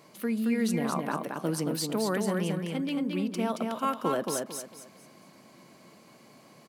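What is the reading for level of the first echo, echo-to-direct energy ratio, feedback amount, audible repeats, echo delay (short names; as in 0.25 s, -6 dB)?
-4.0 dB, -3.5 dB, 30%, 3, 0.224 s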